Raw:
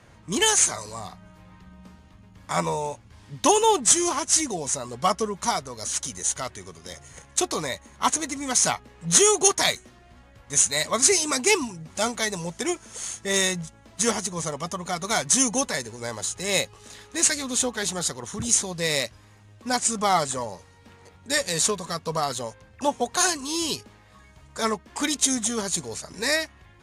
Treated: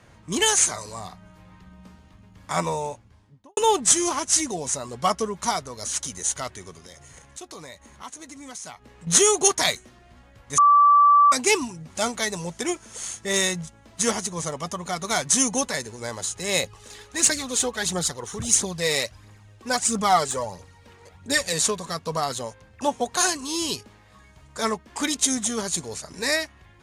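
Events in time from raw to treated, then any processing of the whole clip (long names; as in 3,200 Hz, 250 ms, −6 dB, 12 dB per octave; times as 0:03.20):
0:02.77–0:03.57: fade out and dull
0:06.80–0:09.07: downward compressor 2.5 to 1, threshold −43 dBFS
0:10.58–0:11.32: beep over 1,160 Hz −11.5 dBFS
0:16.63–0:21.53: phase shifter 1.5 Hz, delay 2.7 ms, feedback 46%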